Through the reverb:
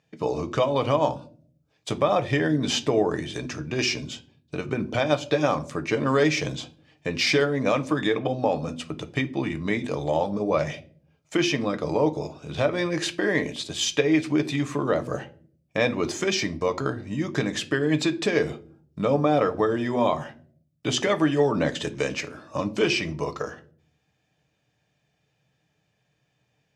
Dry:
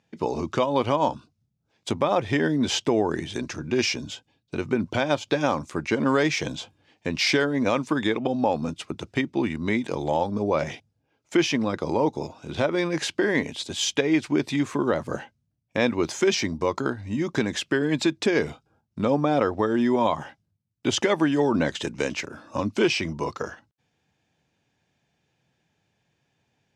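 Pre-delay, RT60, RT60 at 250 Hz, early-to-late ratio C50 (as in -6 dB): 6 ms, 0.50 s, 0.80 s, 18.5 dB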